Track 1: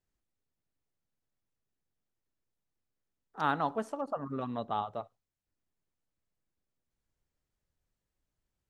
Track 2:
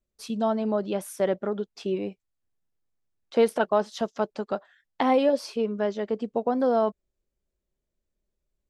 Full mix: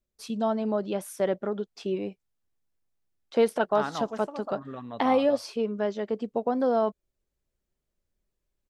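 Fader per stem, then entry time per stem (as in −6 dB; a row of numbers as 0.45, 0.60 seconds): −3.0, −1.5 decibels; 0.35, 0.00 seconds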